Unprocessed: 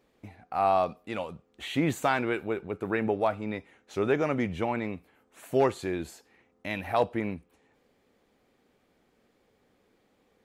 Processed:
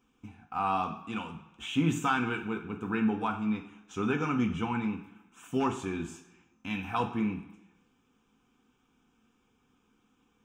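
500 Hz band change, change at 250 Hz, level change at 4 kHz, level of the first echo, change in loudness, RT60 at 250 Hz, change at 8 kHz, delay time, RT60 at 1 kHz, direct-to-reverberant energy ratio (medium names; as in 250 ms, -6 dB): -9.5 dB, +1.5 dB, 0.0 dB, no echo, -2.5 dB, 0.85 s, 0.0 dB, no echo, 1.0 s, 1.0 dB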